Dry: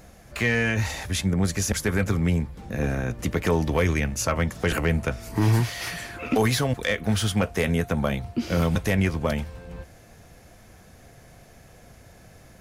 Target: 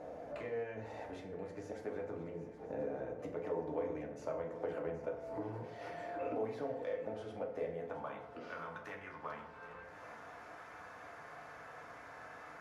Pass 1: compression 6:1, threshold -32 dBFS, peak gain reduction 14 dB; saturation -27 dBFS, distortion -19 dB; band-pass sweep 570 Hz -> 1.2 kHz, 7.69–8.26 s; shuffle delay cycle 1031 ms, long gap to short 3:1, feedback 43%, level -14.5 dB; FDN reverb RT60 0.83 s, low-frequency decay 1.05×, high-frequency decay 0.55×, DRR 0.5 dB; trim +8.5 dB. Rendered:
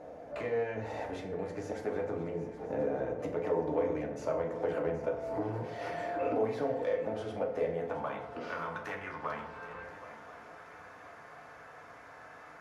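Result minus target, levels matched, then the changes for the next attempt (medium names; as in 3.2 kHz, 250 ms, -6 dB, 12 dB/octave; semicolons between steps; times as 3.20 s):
compression: peak gain reduction -9 dB
change: compression 6:1, threshold -42.5 dBFS, peak gain reduction 23 dB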